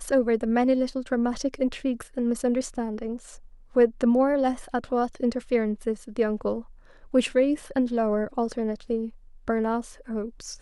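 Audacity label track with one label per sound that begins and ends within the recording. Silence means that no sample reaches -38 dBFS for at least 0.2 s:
3.750000	6.610000	sound
7.140000	9.090000	sound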